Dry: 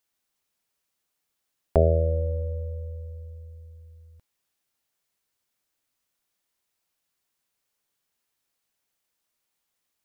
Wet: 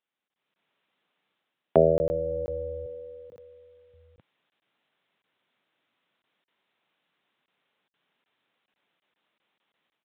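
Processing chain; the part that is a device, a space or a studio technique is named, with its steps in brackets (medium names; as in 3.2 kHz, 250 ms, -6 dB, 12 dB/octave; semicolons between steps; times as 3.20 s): call with lost packets (high-pass 140 Hz 24 dB/octave; resampled via 8 kHz; level rider gain up to 13.5 dB; lost packets random); 2.86–3.94 s: high-pass 130 Hz 24 dB/octave; trim -4 dB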